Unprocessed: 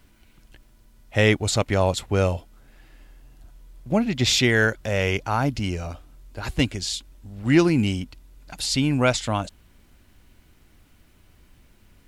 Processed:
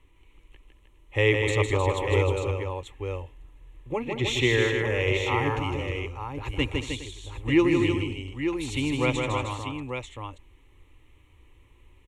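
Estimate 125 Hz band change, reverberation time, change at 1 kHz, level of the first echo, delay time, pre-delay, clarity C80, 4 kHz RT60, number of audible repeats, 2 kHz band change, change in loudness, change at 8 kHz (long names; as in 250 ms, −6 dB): −3.0 dB, no reverb audible, −2.0 dB, −4.5 dB, 157 ms, no reverb audible, no reverb audible, no reverb audible, 5, −2.0 dB, −4.0 dB, −10.5 dB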